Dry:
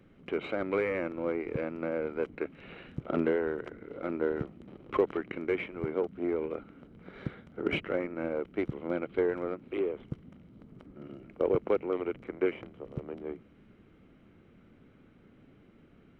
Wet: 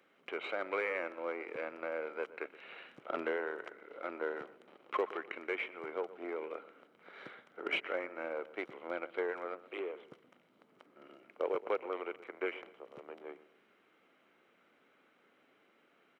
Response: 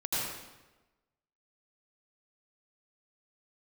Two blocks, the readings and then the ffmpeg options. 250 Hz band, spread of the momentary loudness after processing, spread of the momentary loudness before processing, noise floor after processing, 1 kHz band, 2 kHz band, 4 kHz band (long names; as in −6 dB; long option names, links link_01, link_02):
−13.0 dB, 15 LU, 15 LU, −70 dBFS, −1.0 dB, 0.0 dB, 0.0 dB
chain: -filter_complex "[0:a]highpass=670,asplit=2[link_01][link_02];[link_02]adelay=123,lowpass=frequency=2000:poles=1,volume=-16dB,asplit=2[link_03][link_04];[link_04]adelay=123,lowpass=frequency=2000:poles=1,volume=0.38,asplit=2[link_05][link_06];[link_06]adelay=123,lowpass=frequency=2000:poles=1,volume=0.38[link_07];[link_03][link_05][link_07]amix=inputs=3:normalize=0[link_08];[link_01][link_08]amix=inputs=2:normalize=0"